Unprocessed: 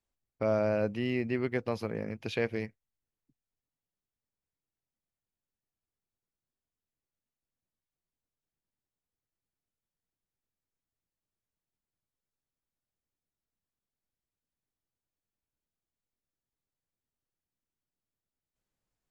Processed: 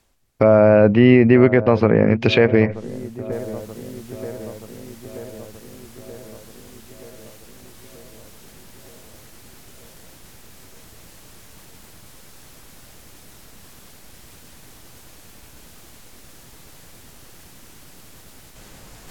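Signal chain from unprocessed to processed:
treble cut that deepens with the level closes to 2,000 Hz, closed at −31 dBFS
reversed playback
upward compression, threshold −45 dBFS
reversed playback
delay with a low-pass on its return 929 ms, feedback 65%, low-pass 1,100 Hz, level −20 dB
boost into a limiter +23 dB
level −1 dB

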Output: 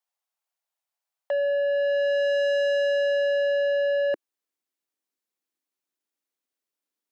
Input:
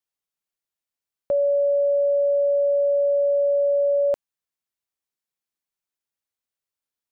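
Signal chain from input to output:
high-pass filter sweep 730 Hz → 280 Hz, 0:01.64–0:04.73
soft clipping −22 dBFS, distortion −9 dB

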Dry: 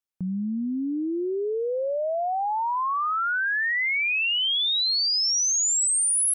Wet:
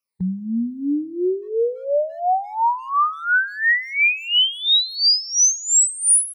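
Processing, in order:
rippled gain that drifts along the octave scale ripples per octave 0.91, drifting −2 Hz, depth 21 dB
high-pass filter 51 Hz
far-end echo of a speakerphone 180 ms, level −21 dB

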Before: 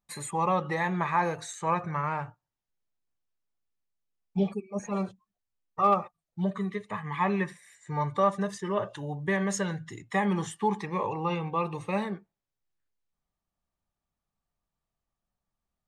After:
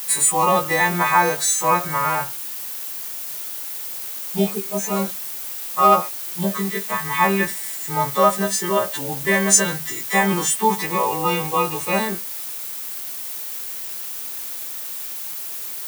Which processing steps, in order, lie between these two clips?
every partial snapped to a pitch grid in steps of 2 semitones
in parallel at −9 dB: bit-depth reduction 6 bits, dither triangular
on the sum: high-pass filter 190 Hz 12 dB per octave
high-shelf EQ 9,900 Hz +12 dB
level +6.5 dB

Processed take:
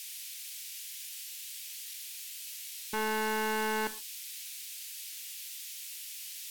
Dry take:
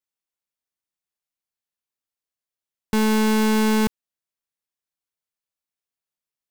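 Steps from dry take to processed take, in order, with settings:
parametric band 470 Hz +2.5 dB 1.3 octaves
noise in a band 2,300–17,000 Hz −44 dBFS
dynamic equaliser 1,700 Hz, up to −5 dB, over −41 dBFS, Q 1.3
wave folding −23.5 dBFS
on a send: convolution reverb, pre-delay 3 ms, DRR 9.5 dB

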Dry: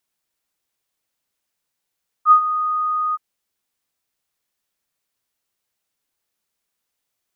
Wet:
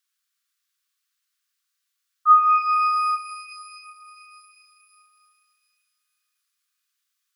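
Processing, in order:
Chebyshev high-pass with heavy ripple 1,100 Hz, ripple 3 dB
reverb with rising layers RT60 3.1 s, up +12 semitones, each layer −8 dB, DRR 5 dB
level +1.5 dB

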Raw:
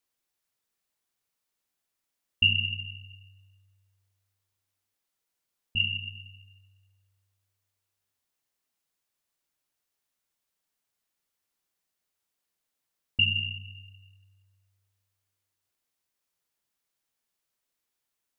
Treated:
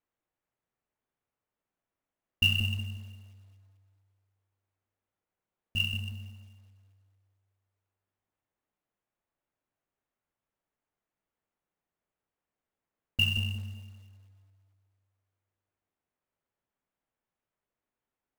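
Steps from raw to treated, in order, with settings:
adaptive Wiener filter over 9 samples
high-shelf EQ 2,300 Hz −7.5 dB
floating-point word with a short mantissa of 2 bits
bucket-brigade delay 183 ms, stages 1,024, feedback 34%, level −3.5 dB
level +1.5 dB

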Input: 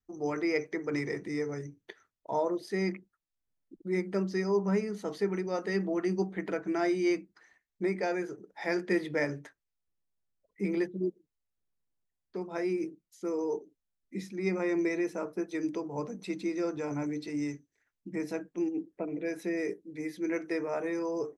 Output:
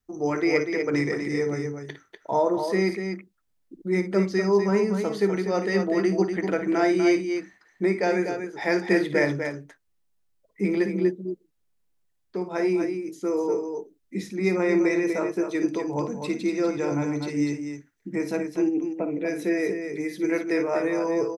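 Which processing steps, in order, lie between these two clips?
loudspeakers that aren't time-aligned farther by 19 metres −11 dB, 84 metres −7 dB
level +7 dB

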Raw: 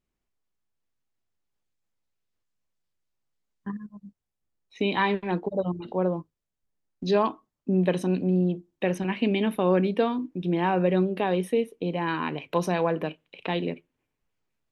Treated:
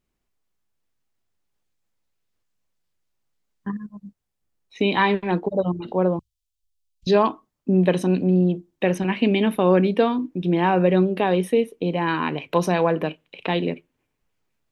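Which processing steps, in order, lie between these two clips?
0:06.19–0:07.07: inverse Chebyshev band-stop filter 190–1,300 Hz, stop band 50 dB
level +5 dB

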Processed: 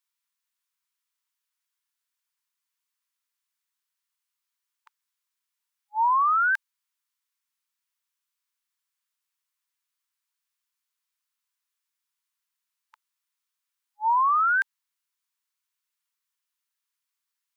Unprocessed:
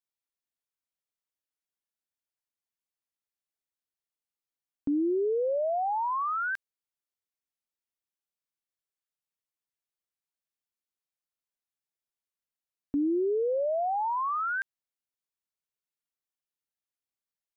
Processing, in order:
linear-phase brick-wall high-pass 880 Hz
level +8.5 dB

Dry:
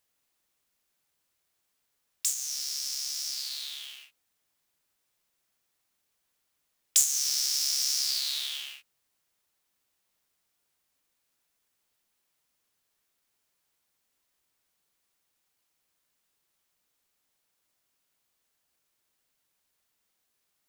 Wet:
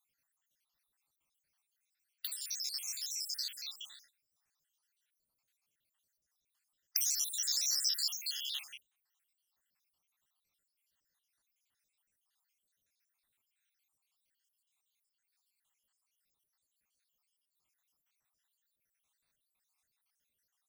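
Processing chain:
time-frequency cells dropped at random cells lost 74%
parametric band 420 Hz −8 dB 1.7 octaves

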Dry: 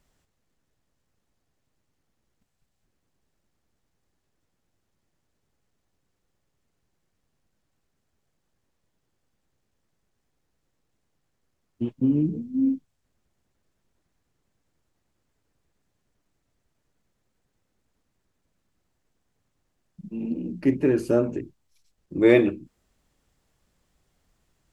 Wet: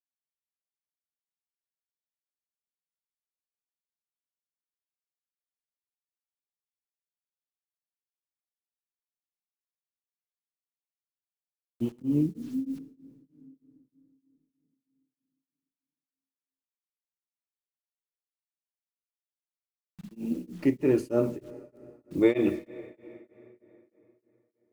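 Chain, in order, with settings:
low-shelf EQ 230 Hz −3 dB
notch filter 1,600 Hz, Q 5.8
bit reduction 9 bits
dense smooth reverb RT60 3.7 s, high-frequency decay 0.65×, DRR 16.5 dB
tremolo along a rectified sine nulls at 3.2 Hz

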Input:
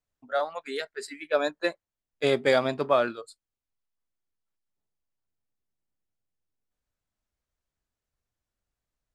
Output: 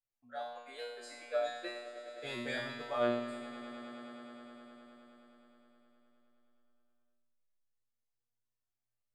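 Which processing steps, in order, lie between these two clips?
tuned comb filter 120 Hz, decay 0.89 s, harmonics all, mix 100%
echo that builds up and dies away 104 ms, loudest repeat 5, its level −17.5 dB
level +4.5 dB

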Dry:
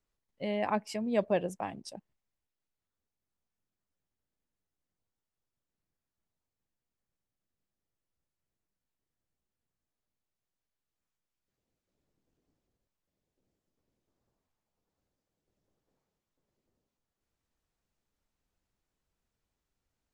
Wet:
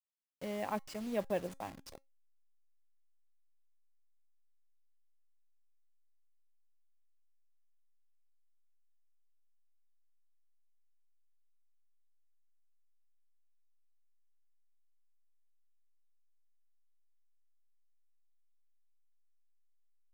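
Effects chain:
hold until the input has moved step −39.5 dBFS
tuned comb filter 270 Hz, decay 0.21 s, harmonics all, mix 40%
level −2.5 dB

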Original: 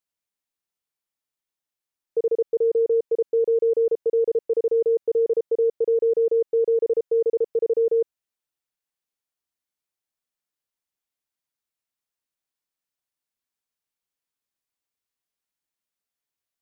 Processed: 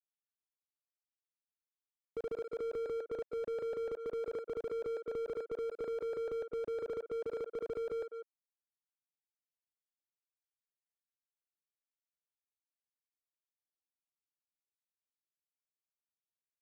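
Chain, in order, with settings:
reverb reduction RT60 1.3 s
0:03.22–0:03.77: comb filter 1.6 ms, depth 39%
power curve on the samples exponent 2
far-end echo of a speakerphone 200 ms, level −22 dB
slew-rate limiting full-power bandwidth 4 Hz
level +5.5 dB

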